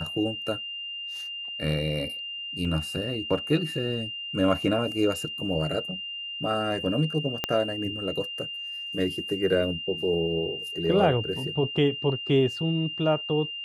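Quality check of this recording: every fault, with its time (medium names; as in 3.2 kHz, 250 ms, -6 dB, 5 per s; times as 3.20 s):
whine 2.8 kHz -33 dBFS
2.65 s: dropout 3.1 ms
7.44 s: pop -10 dBFS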